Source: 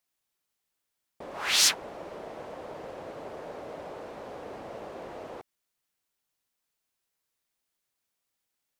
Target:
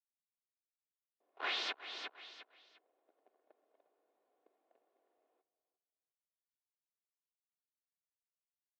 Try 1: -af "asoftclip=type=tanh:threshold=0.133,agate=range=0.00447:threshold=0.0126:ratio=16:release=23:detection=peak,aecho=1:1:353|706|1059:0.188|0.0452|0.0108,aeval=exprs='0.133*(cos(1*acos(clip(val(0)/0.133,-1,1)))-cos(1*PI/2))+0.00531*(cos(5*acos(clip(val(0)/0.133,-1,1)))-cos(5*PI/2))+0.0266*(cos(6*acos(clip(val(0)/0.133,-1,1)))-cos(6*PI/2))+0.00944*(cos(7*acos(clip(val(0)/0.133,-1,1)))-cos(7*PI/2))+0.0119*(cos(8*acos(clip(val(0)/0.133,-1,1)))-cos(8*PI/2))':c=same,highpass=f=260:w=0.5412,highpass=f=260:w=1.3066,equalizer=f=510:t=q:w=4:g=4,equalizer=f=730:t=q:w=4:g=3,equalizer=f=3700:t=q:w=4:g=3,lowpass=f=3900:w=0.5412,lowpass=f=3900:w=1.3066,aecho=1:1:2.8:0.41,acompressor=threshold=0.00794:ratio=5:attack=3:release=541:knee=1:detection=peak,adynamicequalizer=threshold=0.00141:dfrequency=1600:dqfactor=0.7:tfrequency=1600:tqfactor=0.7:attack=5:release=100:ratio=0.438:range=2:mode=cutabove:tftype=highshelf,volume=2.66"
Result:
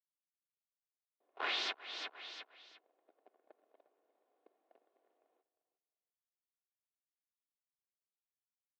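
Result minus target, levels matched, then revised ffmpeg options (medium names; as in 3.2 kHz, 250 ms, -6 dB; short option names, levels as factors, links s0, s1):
saturation: distortion -10 dB
-af "asoftclip=type=tanh:threshold=0.0376,agate=range=0.00447:threshold=0.0126:ratio=16:release=23:detection=peak,aecho=1:1:353|706|1059:0.188|0.0452|0.0108,aeval=exprs='0.133*(cos(1*acos(clip(val(0)/0.133,-1,1)))-cos(1*PI/2))+0.00531*(cos(5*acos(clip(val(0)/0.133,-1,1)))-cos(5*PI/2))+0.0266*(cos(6*acos(clip(val(0)/0.133,-1,1)))-cos(6*PI/2))+0.00944*(cos(7*acos(clip(val(0)/0.133,-1,1)))-cos(7*PI/2))+0.0119*(cos(8*acos(clip(val(0)/0.133,-1,1)))-cos(8*PI/2))':c=same,highpass=f=260:w=0.5412,highpass=f=260:w=1.3066,equalizer=f=510:t=q:w=4:g=4,equalizer=f=730:t=q:w=4:g=3,equalizer=f=3700:t=q:w=4:g=3,lowpass=f=3900:w=0.5412,lowpass=f=3900:w=1.3066,aecho=1:1:2.8:0.41,acompressor=threshold=0.00794:ratio=5:attack=3:release=541:knee=1:detection=peak,adynamicequalizer=threshold=0.00141:dfrequency=1600:dqfactor=0.7:tfrequency=1600:tqfactor=0.7:attack=5:release=100:ratio=0.438:range=2:mode=cutabove:tftype=highshelf,volume=2.66"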